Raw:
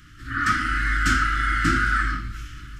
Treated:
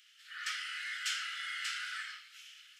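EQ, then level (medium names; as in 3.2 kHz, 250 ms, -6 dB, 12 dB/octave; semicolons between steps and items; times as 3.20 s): ladder high-pass 2.3 kHz, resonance 40%; 0.0 dB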